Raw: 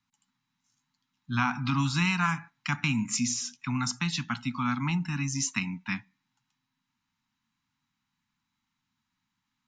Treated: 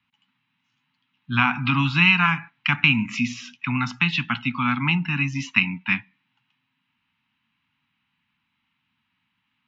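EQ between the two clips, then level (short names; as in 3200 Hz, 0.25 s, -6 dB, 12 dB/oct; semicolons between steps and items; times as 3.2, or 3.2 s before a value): HPF 54 Hz; synth low-pass 2800 Hz, resonance Q 3.4; air absorption 52 m; +5.0 dB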